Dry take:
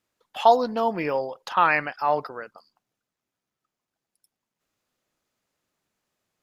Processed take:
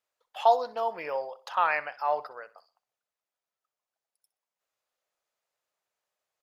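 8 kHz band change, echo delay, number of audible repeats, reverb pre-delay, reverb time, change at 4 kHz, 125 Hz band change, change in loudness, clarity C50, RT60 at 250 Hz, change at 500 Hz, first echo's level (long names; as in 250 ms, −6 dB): can't be measured, 63 ms, 2, no reverb audible, no reverb audible, −7.0 dB, below −20 dB, −5.5 dB, no reverb audible, no reverb audible, −5.5 dB, −18.0 dB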